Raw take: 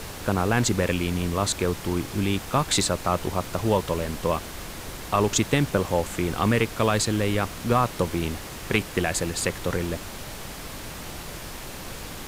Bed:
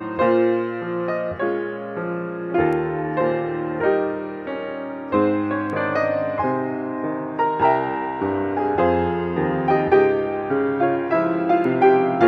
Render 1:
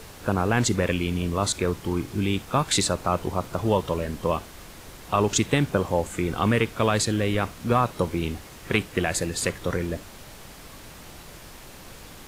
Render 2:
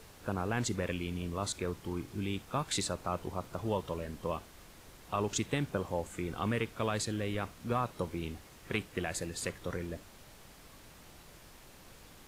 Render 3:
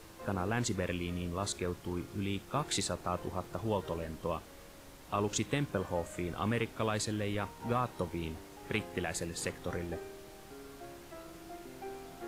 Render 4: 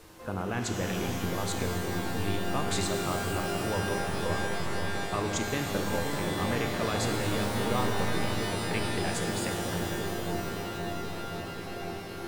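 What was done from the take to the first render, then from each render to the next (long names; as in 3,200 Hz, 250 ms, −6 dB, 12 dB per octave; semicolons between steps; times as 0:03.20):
noise reduction from a noise print 7 dB
level −11 dB
mix in bed −30 dB
delay with a low-pass on its return 526 ms, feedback 78%, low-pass 530 Hz, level −3.5 dB; reverb with rising layers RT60 3.3 s, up +12 semitones, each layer −2 dB, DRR 3.5 dB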